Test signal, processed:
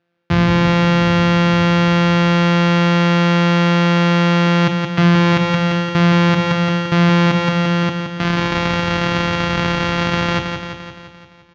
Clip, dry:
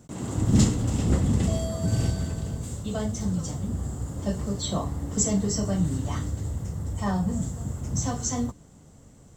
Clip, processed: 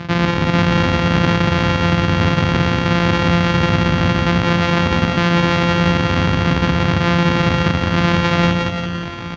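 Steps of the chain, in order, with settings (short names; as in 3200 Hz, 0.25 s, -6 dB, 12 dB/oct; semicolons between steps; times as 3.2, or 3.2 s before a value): sample sorter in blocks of 256 samples; bell 480 Hz -10 dB 2 oct; downsampling 16000 Hz; air absorption 260 m; notches 60/120/180 Hz; doubler 33 ms -13.5 dB; reverse; compressor 6:1, threshold -40 dBFS; reverse; HPF 130 Hz 12 dB/oct; on a send: feedback echo 0.172 s, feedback 59%, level -6 dB; on the sum: maximiser +33 dB; gain -1 dB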